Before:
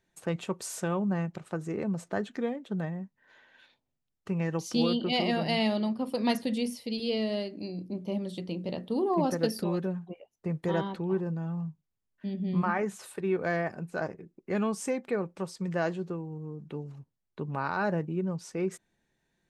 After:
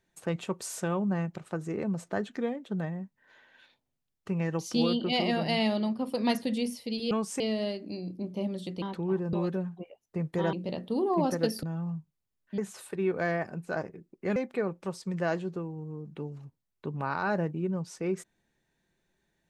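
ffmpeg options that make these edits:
-filter_complex "[0:a]asplit=9[a][b][c][d][e][f][g][h][i];[a]atrim=end=7.112[j];[b]atrim=start=14.608:end=14.902[k];[c]atrim=start=7.108:end=8.532[l];[d]atrim=start=10.828:end=11.342[m];[e]atrim=start=9.628:end=10.832[n];[f]atrim=start=8.528:end=9.632[o];[g]atrim=start=11.338:end=12.292[p];[h]atrim=start=12.828:end=14.612[q];[i]atrim=start=14.898[r];[j][k]acrossfade=d=0.004:c1=hsin:c2=hsin[s];[s][l]acrossfade=d=0.004:c1=hsin:c2=hsin[t];[t][m]acrossfade=d=0.004:c1=hsin:c2=hsin[u];[u][n]acrossfade=d=0.004:c1=hsin:c2=hsin[v];[v][o]acrossfade=d=0.004:c1=hsin:c2=hsin[w];[w][p]acrossfade=d=0.004:c1=hsin:c2=hsin[x];[x][q]acrossfade=d=0.004:c1=hsin:c2=hsin[y];[y][r]acrossfade=d=0.004:c1=hsin:c2=hsin"

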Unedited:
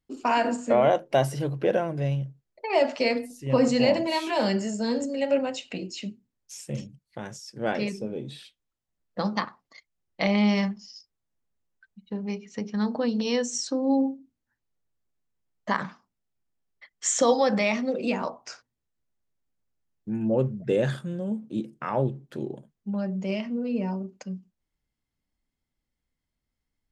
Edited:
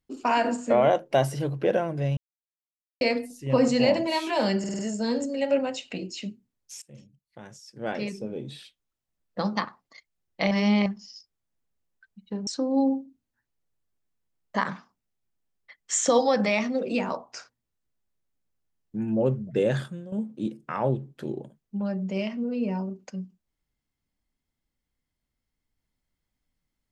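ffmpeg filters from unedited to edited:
-filter_complex "[0:a]asplit=12[a][b][c][d][e][f][g][h][i][j][k][l];[a]atrim=end=2.17,asetpts=PTS-STARTPTS,afade=t=out:st=2.166:d=0.004:c=hsin[m];[b]atrim=start=2.17:end=3.01,asetpts=PTS-STARTPTS,volume=0[n];[c]atrim=start=3.01:end=4.642,asetpts=PTS-STARTPTS,afade=t=in:d=0.004:c=hsin[o];[d]atrim=start=4.588:end=4.642[p];[e]atrim=start=4.588:end=4.642[q];[f]atrim=start=4.588:end=4.642[r];[g]atrim=start=4.588:end=6.62,asetpts=PTS-STARTPTS,afade=t=out:st=2.028:d=0.004:c=hsin:silence=0.0944061[s];[h]atrim=start=6.62:end=10.312,asetpts=PTS-STARTPTS,afade=t=in:d=1.73:silence=0.0944061[t];[i]atrim=start=10.308:end=10.662,asetpts=PTS-STARTPTS,areverse[u];[j]atrim=start=10.658:end=12.272[v];[k]atrim=start=13.598:end=21.25,asetpts=PTS-STARTPTS,afade=t=out:st=7.392:d=0.26:c=qua:silence=0.316228[w];[l]atrim=start=21.25,asetpts=PTS-STARTPTS,afade=t=in:d=0.004:c=hsin:silence=0.316228[x];[m][n][o]concat=n=3:v=0:a=1[y];[y][p]acrossfade=d=0.004:c1=hsin:c2=hsin[z];[z][q]acrossfade=d=0.004:c1=hsin:c2=hsin[aa];[aa][r]acrossfade=d=0.004:c1=hsin:c2=hsin[ab];[s][t]concat=n=2:v=0:a=1[ac];[ab][ac]acrossfade=d=0.004:c1=hsin:c2=hsin[ad];[ad][u]acrossfade=d=0.004:c1=hsin:c2=hsin[ae];[ae][v]acrossfade=d=0.004:c1=hsin:c2=hsin[af];[w][x]concat=n=2:v=0:a=1[ag];[af][ag]acrossfade=d=0.004:c1=hsin:c2=hsin"

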